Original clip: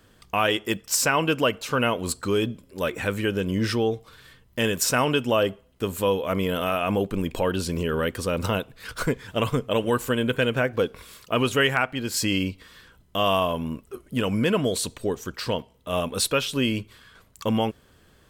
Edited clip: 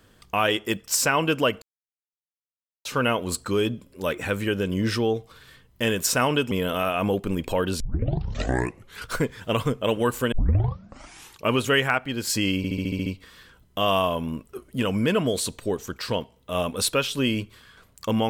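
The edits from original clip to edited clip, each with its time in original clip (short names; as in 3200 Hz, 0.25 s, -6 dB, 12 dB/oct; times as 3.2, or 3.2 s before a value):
1.62 insert silence 1.23 s
5.28–6.38 cut
7.67 tape start 1.27 s
10.19 tape start 1.21 s
12.44 stutter 0.07 s, 8 plays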